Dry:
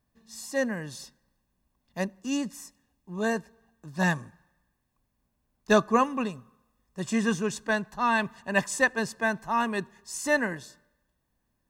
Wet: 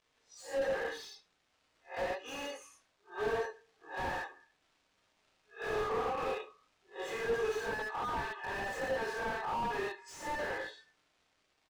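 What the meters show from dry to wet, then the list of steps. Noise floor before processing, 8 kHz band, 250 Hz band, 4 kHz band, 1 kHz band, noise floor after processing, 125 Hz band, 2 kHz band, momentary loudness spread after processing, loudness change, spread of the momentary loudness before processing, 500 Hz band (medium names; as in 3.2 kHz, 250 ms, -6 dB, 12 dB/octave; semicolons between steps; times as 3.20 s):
-77 dBFS, -14.5 dB, -18.5 dB, -6.5 dB, -7.0 dB, -76 dBFS, -14.5 dB, -9.5 dB, 13 LU, -9.0 dB, 17 LU, -5.5 dB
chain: reverse spectral sustain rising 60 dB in 0.31 s; spectral noise reduction 16 dB; high-pass 480 Hz 24 dB/octave; comb 2.4 ms, depth 91%; compression 6:1, threshold -27 dBFS, peak gain reduction 12 dB; chorus 0.38 Hz, delay 18.5 ms, depth 7.3 ms; crackle 290 per s -57 dBFS; distance through air 95 m; delay 74 ms -19.5 dB; gated-style reverb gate 140 ms flat, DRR -3 dB; slew-rate limiter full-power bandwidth 20 Hz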